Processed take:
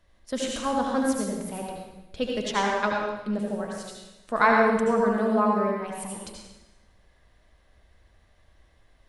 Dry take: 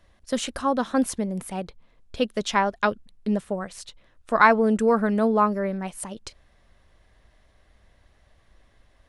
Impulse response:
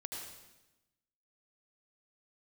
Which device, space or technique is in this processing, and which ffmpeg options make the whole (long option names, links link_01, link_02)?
bathroom: -filter_complex "[0:a]bandreject=frequency=93.41:width_type=h:width=4,bandreject=frequency=186.82:width_type=h:width=4,bandreject=frequency=280.23:width_type=h:width=4,bandreject=frequency=373.64:width_type=h:width=4,bandreject=frequency=467.05:width_type=h:width=4,bandreject=frequency=560.46:width_type=h:width=4,bandreject=frequency=653.87:width_type=h:width=4,bandreject=frequency=747.28:width_type=h:width=4,bandreject=frequency=840.69:width_type=h:width=4,bandreject=frequency=934.1:width_type=h:width=4,bandreject=frequency=1027.51:width_type=h:width=4,bandreject=frequency=1120.92:width_type=h:width=4,bandreject=frequency=1214.33:width_type=h:width=4,bandreject=frequency=1307.74:width_type=h:width=4,bandreject=frequency=1401.15:width_type=h:width=4,bandreject=frequency=1494.56:width_type=h:width=4,bandreject=frequency=1587.97:width_type=h:width=4,bandreject=frequency=1681.38:width_type=h:width=4,bandreject=frequency=1774.79:width_type=h:width=4,bandreject=frequency=1868.2:width_type=h:width=4,bandreject=frequency=1961.61:width_type=h:width=4,bandreject=frequency=2055.02:width_type=h:width=4,bandreject=frequency=2148.43:width_type=h:width=4,bandreject=frequency=2241.84:width_type=h:width=4,bandreject=frequency=2335.25:width_type=h:width=4,bandreject=frequency=2428.66:width_type=h:width=4,bandreject=frequency=2522.07:width_type=h:width=4,bandreject=frequency=2615.48:width_type=h:width=4,bandreject=frequency=2708.89:width_type=h:width=4,bandreject=frequency=2802.3:width_type=h:width=4[link_01];[1:a]atrim=start_sample=2205[link_02];[link_01][link_02]afir=irnorm=-1:irlink=0"